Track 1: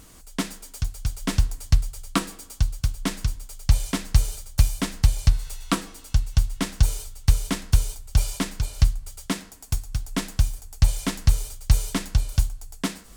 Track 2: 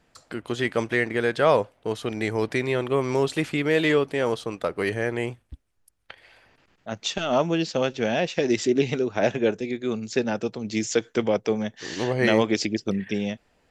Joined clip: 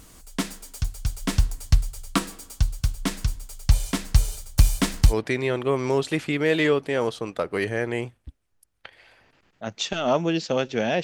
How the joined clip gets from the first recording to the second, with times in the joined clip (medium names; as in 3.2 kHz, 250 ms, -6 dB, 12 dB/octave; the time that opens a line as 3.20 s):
track 1
4.57–5.14 s: waveshaping leveller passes 1
5.11 s: go over to track 2 from 2.36 s, crossfade 0.06 s